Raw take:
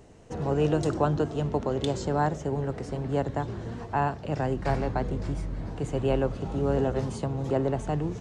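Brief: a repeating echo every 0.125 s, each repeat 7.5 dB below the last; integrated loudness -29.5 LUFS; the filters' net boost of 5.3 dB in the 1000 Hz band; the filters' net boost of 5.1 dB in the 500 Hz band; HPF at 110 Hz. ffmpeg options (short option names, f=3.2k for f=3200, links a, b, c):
-af "highpass=110,equalizer=f=500:t=o:g=5,equalizer=f=1k:t=o:g=5,aecho=1:1:125|250|375|500|625:0.422|0.177|0.0744|0.0312|0.0131,volume=-5dB"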